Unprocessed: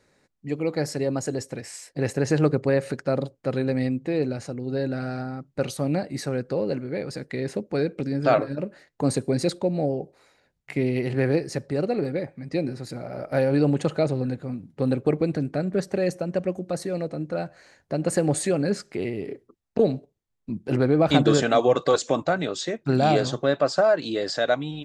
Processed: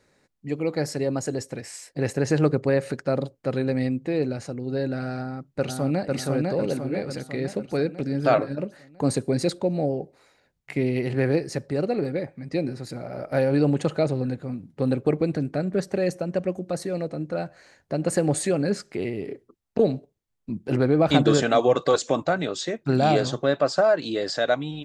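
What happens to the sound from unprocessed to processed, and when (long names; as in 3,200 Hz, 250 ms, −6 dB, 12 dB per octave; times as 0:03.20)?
0:05.18–0:06.15: delay throw 500 ms, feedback 55%, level −2 dB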